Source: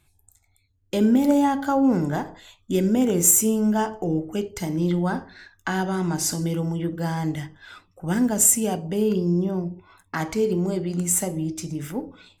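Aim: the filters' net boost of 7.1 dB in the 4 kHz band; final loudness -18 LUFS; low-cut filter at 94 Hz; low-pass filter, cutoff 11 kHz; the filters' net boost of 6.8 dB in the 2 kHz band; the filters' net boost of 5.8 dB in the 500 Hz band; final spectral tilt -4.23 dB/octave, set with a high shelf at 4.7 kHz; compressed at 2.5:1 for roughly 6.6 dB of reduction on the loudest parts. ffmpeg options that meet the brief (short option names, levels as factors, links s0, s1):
-af "highpass=94,lowpass=11000,equalizer=f=500:t=o:g=7,equalizer=f=2000:t=o:g=7,equalizer=f=4000:t=o:g=5,highshelf=f=4700:g=4.5,acompressor=threshold=0.112:ratio=2.5,volume=1.78"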